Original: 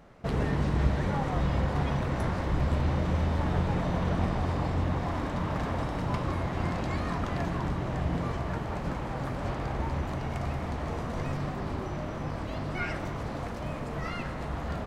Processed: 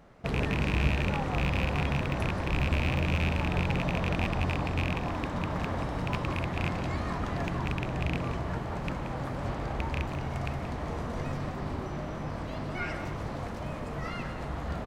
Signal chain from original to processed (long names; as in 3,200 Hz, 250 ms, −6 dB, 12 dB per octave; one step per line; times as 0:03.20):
loose part that buzzes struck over −25 dBFS, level −18 dBFS
single-tap delay 178 ms −10.5 dB
level −1.5 dB